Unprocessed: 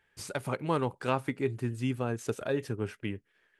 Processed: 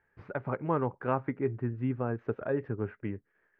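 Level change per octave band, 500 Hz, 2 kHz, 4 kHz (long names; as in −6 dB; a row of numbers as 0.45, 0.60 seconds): 0.0 dB, −3.5 dB, below −15 dB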